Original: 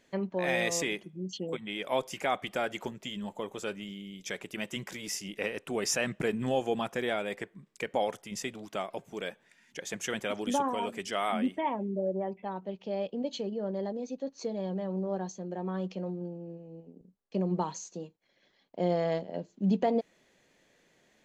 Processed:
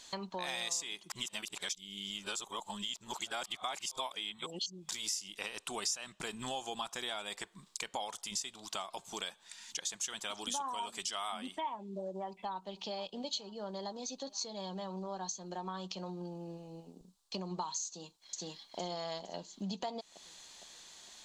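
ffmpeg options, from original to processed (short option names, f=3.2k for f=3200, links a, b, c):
-filter_complex "[0:a]asplit=2[a][b];[b]afade=t=in:st=12.29:d=0.01,afade=t=out:st=12.92:d=0.01,aecho=0:1:470|940|1410|1880|2350:0.133352|0.0733437|0.040339|0.0221865|0.0122026[c];[a][c]amix=inputs=2:normalize=0,asplit=2[d][e];[e]afade=t=in:st=17.87:d=0.01,afade=t=out:st=18.79:d=0.01,aecho=0:1:460|920|1380|1840|2300|2760:0.891251|0.401063|0.180478|0.0812152|0.0365469|0.0164461[f];[d][f]amix=inputs=2:normalize=0,asplit=3[g][h][i];[g]atrim=end=1.102[j];[h]atrim=start=1.098:end=4.892,asetpts=PTS-STARTPTS,areverse[k];[i]atrim=start=4.888[l];[j][k]acrossfade=d=0.004:c1=hsin:c2=hsin[m];[m][l]acrossfade=d=0.004:c1=hsin:c2=hsin,equalizer=f=125:t=o:w=1:g=-11,equalizer=f=250:t=o:w=1:g=-7,equalizer=f=500:t=o:w=1:g=-11,equalizer=f=1k:t=o:w=1:g=8,equalizer=f=2k:t=o:w=1:g=-8,equalizer=f=4k:t=o:w=1:g=12,equalizer=f=8k:t=o:w=1:g=11,acompressor=threshold=-47dB:ratio=4,volume=8dB"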